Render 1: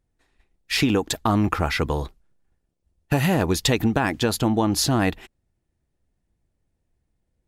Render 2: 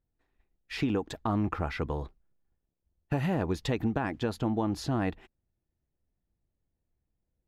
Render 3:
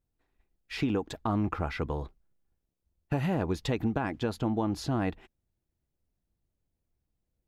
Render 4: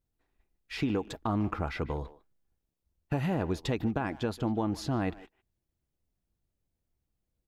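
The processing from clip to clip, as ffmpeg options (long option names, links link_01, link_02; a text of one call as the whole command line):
ffmpeg -i in.wav -af "lowpass=frequency=1600:poles=1,volume=-8dB" out.wav
ffmpeg -i in.wav -af "bandreject=frequency=1800:width=23" out.wav
ffmpeg -i in.wav -filter_complex "[0:a]asplit=2[link_01][link_02];[link_02]adelay=150,highpass=300,lowpass=3400,asoftclip=type=hard:threshold=-27dB,volume=-16dB[link_03];[link_01][link_03]amix=inputs=2:normalize=0,volume=-1dB" out.wav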